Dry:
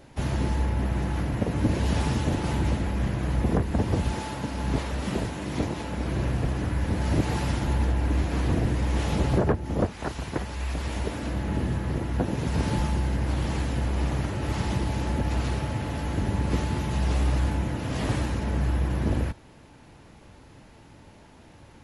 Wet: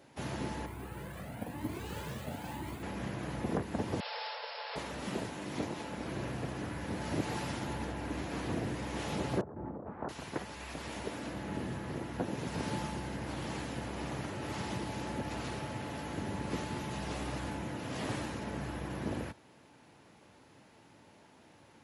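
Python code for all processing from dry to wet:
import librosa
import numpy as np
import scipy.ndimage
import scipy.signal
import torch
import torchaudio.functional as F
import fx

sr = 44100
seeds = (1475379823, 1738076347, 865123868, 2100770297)

y = fx.chain(x, sr, fx.resample_bad(factor=4, down='filtered', up='hold'),
    fx.comb_cascade(direction='rising', hz=1.0), at=(0.66, 2.83))
y = fx.chain(y, sr, fx.brickwall_bandpass(low_hz=430.0, high_hz=5500.0),
    fx.high_shelf(hz=3400.0, db=11.5), at=(4.0, 4.76))
y = fx.chain(y, sr, fx.lowpass(hz=1300.0, slope=24),
    fx.over_compress(threshold_db=-32.0, ratio=-1.0), at=(9.41, 10.09))
y = scipy.signal.sosfilt(scipy.signal.butter(2, 90.0, 'highpass', fs=sr, output='sos'), y)
y = fx.low_shelf(y, sr, hz=130.0, db=-10.5)
y = y * librosa.db_to_amplitude(-6.0)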